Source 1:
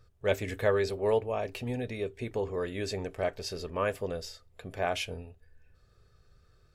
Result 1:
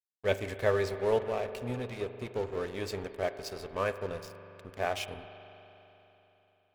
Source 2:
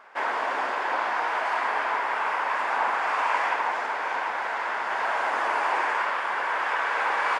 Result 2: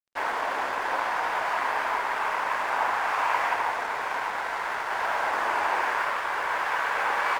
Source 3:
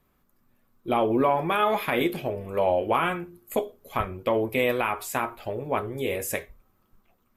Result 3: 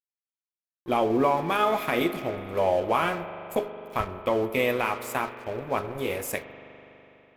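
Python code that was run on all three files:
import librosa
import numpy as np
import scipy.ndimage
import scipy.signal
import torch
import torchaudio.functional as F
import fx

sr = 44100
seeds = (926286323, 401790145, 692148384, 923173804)

y = np.sign(x) * np.maximum(np.abs(x) - 10.0 ** (-41.5 / 20.0), 0.0)
y = fx.rev_spring(y, sr, rt60_s=3.6, pass_ms=(41,), chirp_ms=75, drr_db=10.5)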